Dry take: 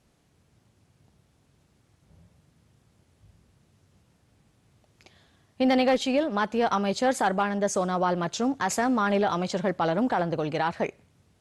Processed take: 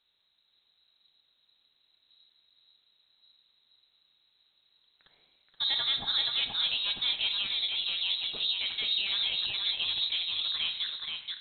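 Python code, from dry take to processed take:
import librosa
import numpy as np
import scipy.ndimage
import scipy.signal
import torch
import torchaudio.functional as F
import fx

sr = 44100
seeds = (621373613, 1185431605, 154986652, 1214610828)

y = fx.octave_divider(x, sr, octaves=2, level_db=0.0)
y = scipy.signal.sosfilt(scipy.signal.butter(2, 76.0, 'highpass', fs=sr, output='sos'), y)
y = y + 10.0 ** (-3.5 / 20.0) * np.pad(y, (int(477 * sr / 1000.0), 0))[:len(y)]
y = fx.rev_schroeder(y, sr, rt60_s=0.73, comb_ms=26, drr_db=9.0)
y = fx.freq_invert(y, sr, carrier_hz=4000)
y = F.gain(torch.from_numpy(y), -8.5).numpy()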